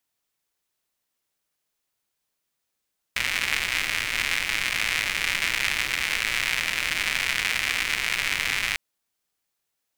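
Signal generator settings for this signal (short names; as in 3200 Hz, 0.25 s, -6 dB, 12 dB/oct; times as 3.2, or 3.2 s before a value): rain from filtered ticks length 5.60 s, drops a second 180, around 2200 Hz, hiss -14 dB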